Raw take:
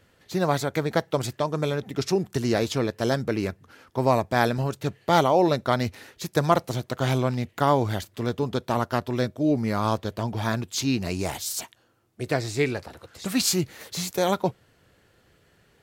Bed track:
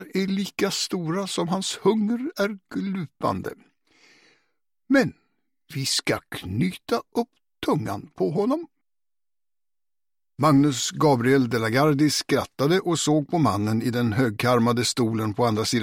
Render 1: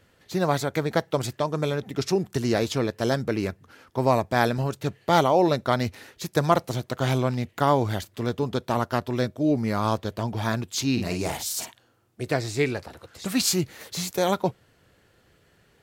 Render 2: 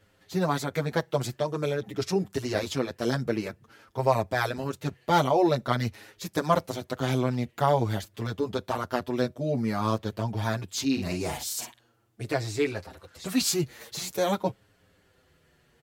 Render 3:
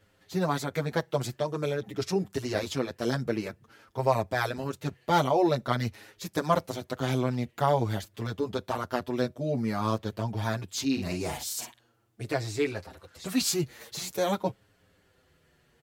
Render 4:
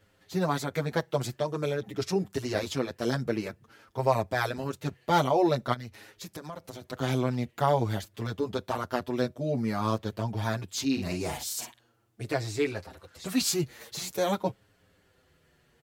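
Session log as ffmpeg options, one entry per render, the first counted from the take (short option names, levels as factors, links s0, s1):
-filter_complex "[0:a]asettb=1/sr,asplit=3[s0][s1][s2];[s0]atrim=end=10.924[s3];[s1]atrim=start=10.92:end=12.22,asetpts=PTS-STARTPTS,afade=t=in:d=0.004:c=qsin,afade=t=out:st=1.296:d=0.004:c=qsin,asplit=2[s4][s5];[s5]adelay=50,volume=0.501[s6];[s4][s6]amix=inputs=2:normalize=0,atrim=end_sample=57330[s7];[s2]atrim=start=12.216[s8];[s3][s7]acrossfade=d=0.004:c1=hsin:c2=qsin[s9];[s9][s8]acrossfade=d=0.004:c1=qsin:c2=hsin"
-filter_complex "[0:a]asplit=2[s0][s1];[s1]adelay=7.1,afreqshift=-0.48[s2];[s0][s2]amix=inputs=2:normalize=1"
-af "volume=0.841"
-filter_complex "[0:a]asplit=3[s0][s1][s2];[s0]afade=t=out:st=5.73:d=0.02[s3];[s1]acompressor=threshold=0.0141:ratio=6:attack=3.2:release=140:knee=1:detection=peak,afade=t=in:st=5.73:d=0.02,afade=t=out:st=6.92:d=0.02[s4];[s2]afade=t=in:st=6.92:d=0.02[s5];[s3][s4][s5]amix=inputs=3:normalize=0"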